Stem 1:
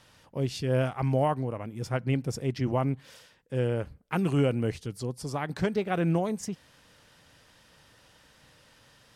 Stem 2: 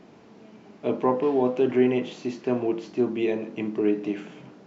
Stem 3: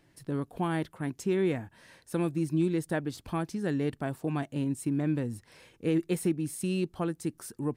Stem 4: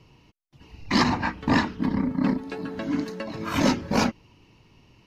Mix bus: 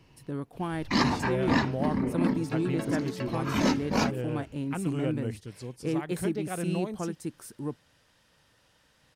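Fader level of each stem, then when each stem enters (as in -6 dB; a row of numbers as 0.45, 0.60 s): -6.5, -19.0, -2.5, -4.0 dB; 0.60, 0.25, 0.00, 0.00 s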